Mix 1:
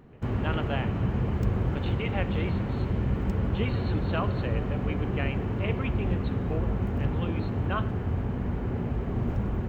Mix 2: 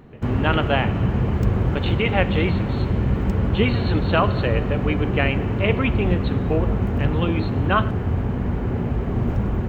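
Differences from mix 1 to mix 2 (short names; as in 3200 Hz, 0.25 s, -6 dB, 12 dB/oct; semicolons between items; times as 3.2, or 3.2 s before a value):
speech +12.0 dB; background +6.5 dB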